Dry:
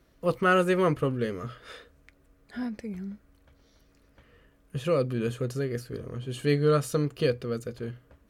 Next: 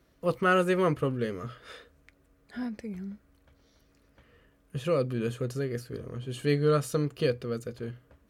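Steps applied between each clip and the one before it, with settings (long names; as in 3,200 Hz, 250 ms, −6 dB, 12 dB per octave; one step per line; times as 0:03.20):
high-pass filter 42 Hz
level −1.5 dB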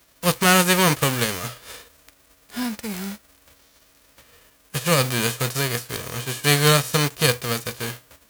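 spectral envelope flattened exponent 0.3
level +7.5 dB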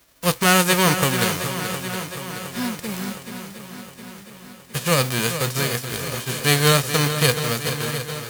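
feedback echo with a long and a short gap by turns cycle 714 ms, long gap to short 1.5 to 1, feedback 57%, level −10 dB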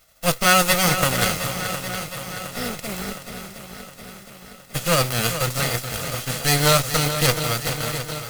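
lower of the sound and its delayed copy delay 1.5 ms
level +1.5 dB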